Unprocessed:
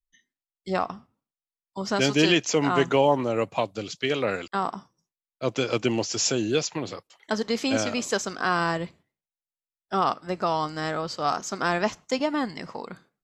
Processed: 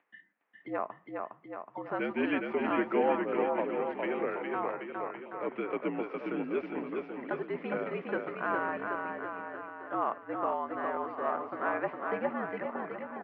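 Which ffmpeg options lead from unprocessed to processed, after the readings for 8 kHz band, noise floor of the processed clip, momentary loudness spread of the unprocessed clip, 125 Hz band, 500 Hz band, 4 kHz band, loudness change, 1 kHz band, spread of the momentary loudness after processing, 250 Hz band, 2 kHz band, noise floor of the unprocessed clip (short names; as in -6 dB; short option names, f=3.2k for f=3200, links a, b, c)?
under -40 dB, -61 dBFS, 14 LU, -16.5 dB, -6.0 dB, -23.5 dB, -8.0 dB, -6.0 dB, 9 LU, -7.5 dB, -7.0 dB, under -85 dBFS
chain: -af "acompressor=mode=upward:threshold=-26dB:ratio=2.5,aecho=1:1:410|779|1111|1410|1679:0.631|0.398|0.251|0.158|0.1,highpass=f=310:t=q:w=0.5412,highpass=f=310:t=q:w=1.307,lowpass=f=2.3k:t=q:w=0.5176,lowpass=f=2.3k:t=q:w=0.7071,lowpass=f=2.3k:t=q:w=1.932,afreqshift=-59,volume=-7.5dB"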